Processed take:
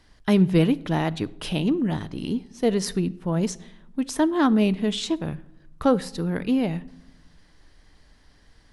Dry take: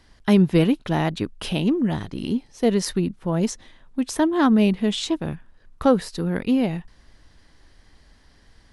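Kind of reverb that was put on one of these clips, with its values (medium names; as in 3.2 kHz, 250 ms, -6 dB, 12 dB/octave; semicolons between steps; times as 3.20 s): simulated room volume 2300 m³, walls furnished, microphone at 0.44 m; trim -2 dB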